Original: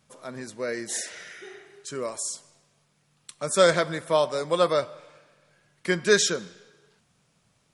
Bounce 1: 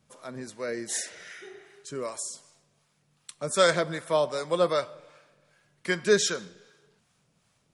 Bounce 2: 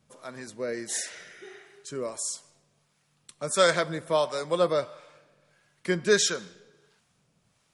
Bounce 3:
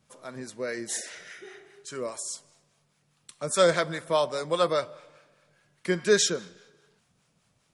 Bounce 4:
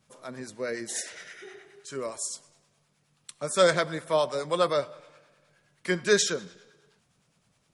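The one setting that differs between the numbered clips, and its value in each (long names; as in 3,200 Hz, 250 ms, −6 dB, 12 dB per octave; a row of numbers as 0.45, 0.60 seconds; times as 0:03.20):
two-band tremolo in antiphase, speed: 2.6, 1.5, 4.9, 9.6 Hertz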